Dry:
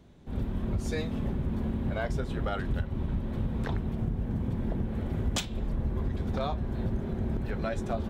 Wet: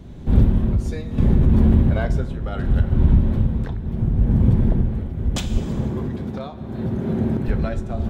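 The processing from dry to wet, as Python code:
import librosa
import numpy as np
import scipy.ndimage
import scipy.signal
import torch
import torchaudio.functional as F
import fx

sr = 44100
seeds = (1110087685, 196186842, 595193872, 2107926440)

y = fx.low_shelf(x, sr, hz=300.0, db=9.5)
y = fx.rider(y, sr, range_db=10, speed_s=0.5)
y = fx.highpass(y, sr, hz=150.0, slope=12, at=(5.58, 7.48))
y = fx.rev_plate(y, sr, seeds[0], rt60_s=1.6, hf_ratio=0.85, predelay_ms=0, drr_db=10.5)
y = fx.tremolo_shape(y, sr, shape='triangle', hz=0.73, depth_pct=80)
y = fx.env_flatten(y, sr, amount_pct=70, at=(1.18, 1.82))
y = F.gain(torch.from_numpy(y), 8.0).numpy()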